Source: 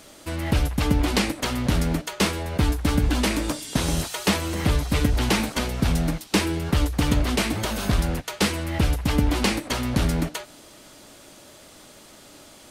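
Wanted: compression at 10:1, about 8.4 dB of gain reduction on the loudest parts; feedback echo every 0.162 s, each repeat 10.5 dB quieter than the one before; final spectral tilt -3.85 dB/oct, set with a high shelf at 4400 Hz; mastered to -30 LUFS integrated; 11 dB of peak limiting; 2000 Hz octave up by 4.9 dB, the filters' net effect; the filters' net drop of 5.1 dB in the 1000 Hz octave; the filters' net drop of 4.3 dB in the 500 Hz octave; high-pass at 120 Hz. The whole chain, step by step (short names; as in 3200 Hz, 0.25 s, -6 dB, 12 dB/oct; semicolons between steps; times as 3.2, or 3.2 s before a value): HPF 120 Hz; bell 500 Hz -4 dB; bell 1000 Hz -8 dB; bell 2000 Hz +7.5 dB; high shelf 4400 Hz +3.5 dB; compressor 10:1, threshold -26 dBFS; limiter -20 dBFS; feedback echo 0.162 s, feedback 30%, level -10.5 dB; gain +1.5 dB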